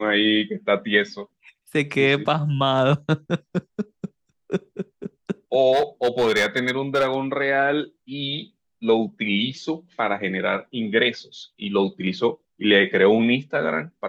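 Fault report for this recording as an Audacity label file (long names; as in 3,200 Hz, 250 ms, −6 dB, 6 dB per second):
5.720000	7.160000	clipping −14.5 dBFS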